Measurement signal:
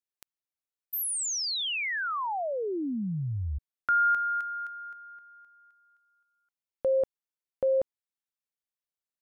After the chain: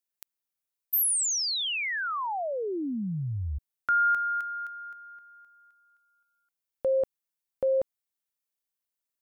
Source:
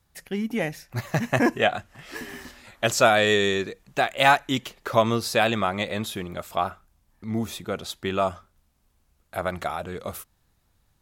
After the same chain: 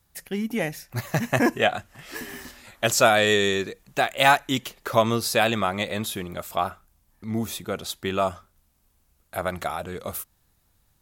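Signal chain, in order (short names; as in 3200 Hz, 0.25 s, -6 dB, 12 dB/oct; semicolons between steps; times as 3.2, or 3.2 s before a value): high shelf 8400 Hz +9 dB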